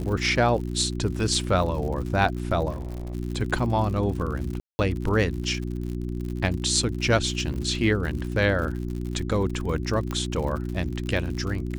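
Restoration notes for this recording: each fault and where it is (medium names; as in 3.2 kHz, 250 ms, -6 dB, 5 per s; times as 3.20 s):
crackle 85 per s -32 dBFS
hum 60 Hz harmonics 6 -30 dBFS
2.70–3.15 s: clipped -28.5 dBFS
4.60–4.79 s: dropout 190 ms
7.54 s: dropout 3.2 ms
10.11 s: pop -16 dBFS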